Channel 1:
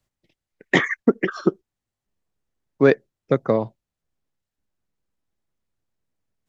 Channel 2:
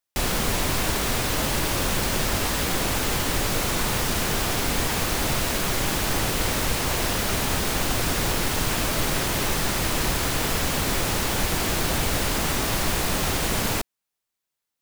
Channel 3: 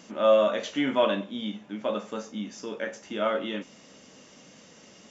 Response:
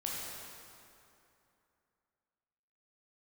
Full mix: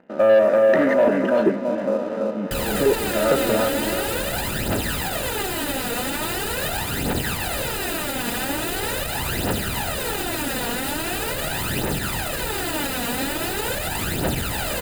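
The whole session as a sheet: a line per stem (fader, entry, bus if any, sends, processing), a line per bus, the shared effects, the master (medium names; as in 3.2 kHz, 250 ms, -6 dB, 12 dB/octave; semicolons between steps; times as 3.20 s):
-4.5 dB, 0.00 s, no send, no echo send, compression, threshold -23 dBFS, peak gain reduction 13 dB; step-sequenced low-pass 5.6 Hz 410–6100 Hz
-7.0 dB, 2.35 s, no send, no echo send, peak limiter -15 dBFS, peak gain reduction 4.5 dB; phaser 0.42 Hz, delay 4.3 ms, feedback 63%
-1.0 dB, 0.00 s, no send, echo send -3 dB, spectrogram pixelated in time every 100 ms; steep low-pass 2.2 kHz; peaking EQ 490 Hz +3 dB 1.3 oct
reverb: none
echo: feedback delay 334 ms, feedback 48%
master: peaking EQ 5.8 kHz -12 dB 0.36 oct; waveshaping leveller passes 2; comb of notches 1.1 kHz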